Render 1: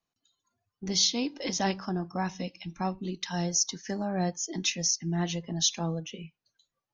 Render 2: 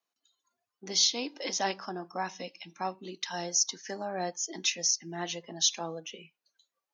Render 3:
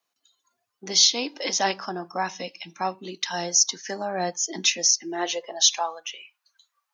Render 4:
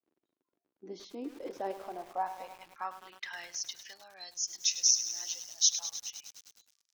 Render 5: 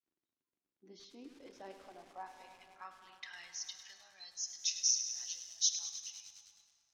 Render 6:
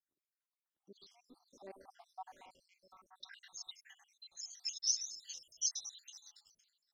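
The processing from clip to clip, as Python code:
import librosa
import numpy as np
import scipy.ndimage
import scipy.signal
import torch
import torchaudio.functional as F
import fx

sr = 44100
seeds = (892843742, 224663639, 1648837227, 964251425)

y1 = scipy.signal.sosfilt(scipy.signal.butter(2, 390.0, 'highpass', fs=sr, output='sos'), x)
y2 = fx.low_shelf(y1, sr, hz=310.0, db=-6.5)
y2 = fx.filter_sweep_highpass(y2, sr, from_hz=100.0, to_hz=1100.0, start_s=4.08, end_s=6.07, q=2.1)
y2 = F.gain(torch.from_numpy(y2), 7.5).numpy()
y3 = fx.dmg_crackle(y2, sr, seeds[0], per_s=60.0, level_db=-38.0)
y3 = fx.filter_sweep_bandpass(y3, sr, from_hz=320.0, to_hz=5700.0, start_s=1.23, end_s=4.54, q=2.6)
y3 = fx.echo_crushed(y3, sr, ms=103, feedback_pct=80, bits=7, wet_db=-11.0)
y3 = F.gain(torch.from_numpy(y3), -4.0).numpy()
y4 = scipy.signal.sosfilt(scipy.signal.bessel(2, 7200.0, 'lowpass', norm='mag', fs=sr, output='sos'), y3)
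y4 = fx.peak_eq(y4, sr, hz=520.0, db=-12.0, octaves=2.8)
y4 = fx.rev_plate(y4, sr, seeds[1], rt60_s=3.7, hf_ratio=0.45, predelay_ms=0, drr_db=7.5)
y4 = F.gain(torch.from_numpy(y4), -3.5).numpy()
y5 = fx.spec_dropout(y4, sr, seeds[2], share_pct=72)
y5 = fx.notch(y5, sr, hz=2600.0, q=15.0)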